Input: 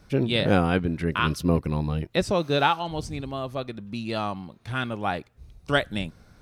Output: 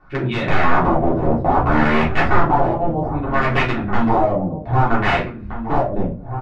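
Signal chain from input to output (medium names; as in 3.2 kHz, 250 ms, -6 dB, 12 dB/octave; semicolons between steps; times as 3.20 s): 0.63–2.89 s: bass shelf 490 Hz +9 dB; level rider gain up to 13.5 dB; integer overflow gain 12 dB; LFO low-pass sine 0.62 Hz 550–2300 Hz; echo from a far wall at 270 m, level -10 dB; simulated room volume 150 m³, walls furnished, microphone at 3.4 m; tape noise reduction on one side only encoder only; trim -8 dB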